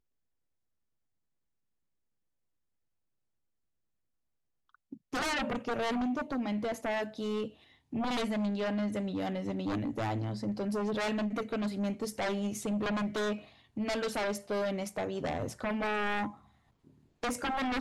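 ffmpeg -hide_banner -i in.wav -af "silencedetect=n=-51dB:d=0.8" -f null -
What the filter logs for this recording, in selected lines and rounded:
silence_start: 0.00
silence_end: 4.75 | silence_duration: 4.75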